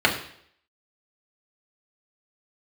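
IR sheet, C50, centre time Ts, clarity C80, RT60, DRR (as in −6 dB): 9.0 dB, 19 ms, 12.0 dB, 0.65 s, −2.0 dB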